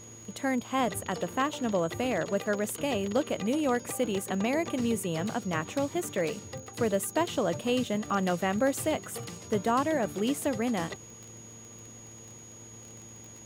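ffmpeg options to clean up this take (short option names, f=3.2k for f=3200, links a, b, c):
-af "adeclick=t=4,bandreject=f=113.2:t=h:w=4,bandreject=f=226.4:t=h:w=4,bandreject=f=339.6:t=h:w=4,bandreject=f=452.8:t=h:w=4,bandreject=f=6.7k:w=30"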